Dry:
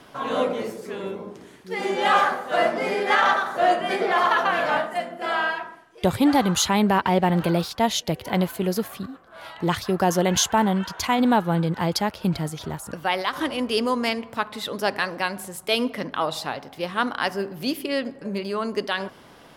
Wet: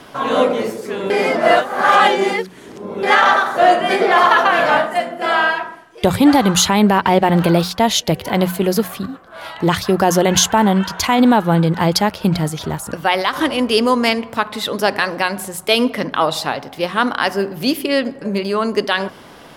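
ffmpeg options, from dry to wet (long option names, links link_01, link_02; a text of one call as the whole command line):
ffmpeg -i in.wav -filter_complex "[0:a]asplit=3[link_01][link_02][link_03];[link_01]atrim=end=1.102[link_04];[link_02]atrim=start=1.098:end=3.032,asetpts=PTS-STARTPTS,areverse[link_05];[link_03]atrim=start=3.028[link_06];[link_04][link_05]acrossfade=duration=0.004:curve1=hsin:curve2=hsin[link_07];[link_07][link_06]acrossfade=duration=0.004:curve1=hsin:curve2=hsin,bandreject=frequency=60:width_type=h:width=6,bandreject=frequency=120:width_type=h:width=6,bandreject=frequency=180:width_type=h:width=6,alimiter=level_in=9.5dB:limit=-1dB:release=50:level=0:latency=1,volume=-1dB" out.wav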